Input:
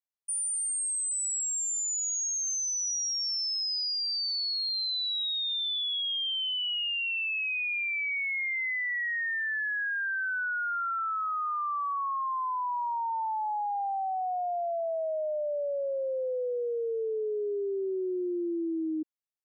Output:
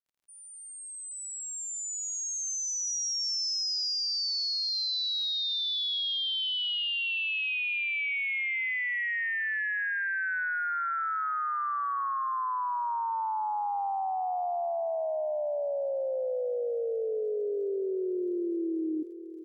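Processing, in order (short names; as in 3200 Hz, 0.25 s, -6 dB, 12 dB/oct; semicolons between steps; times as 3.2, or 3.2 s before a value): opening faded in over 3.28 s; crackle 56/s -61 dBFS; on a send: feedback echo 0.575 s, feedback 50%, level -13 dB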